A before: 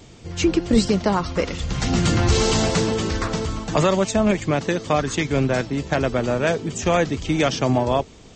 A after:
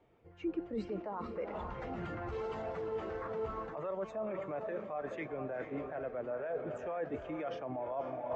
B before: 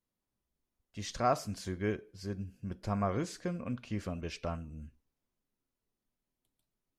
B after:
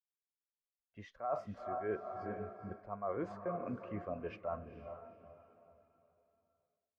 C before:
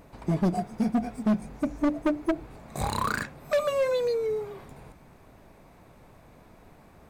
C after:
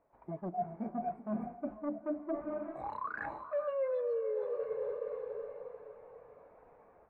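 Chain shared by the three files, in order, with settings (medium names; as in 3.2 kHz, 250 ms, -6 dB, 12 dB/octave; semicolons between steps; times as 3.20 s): three-band isolator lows -13 dB, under 420 Hz, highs -19 dB, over 2.5 kHz; on a send: echo that smears into a reverb 460 ms, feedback 50%, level -9 dB; on the sum: level rider gain up to 8.5 dB; peak limiter -13 dBFS; reverse; compression 16:1, threshold -31 dBFS; reverse; spectral contrast expander 1.5:1; trim -3.5 dB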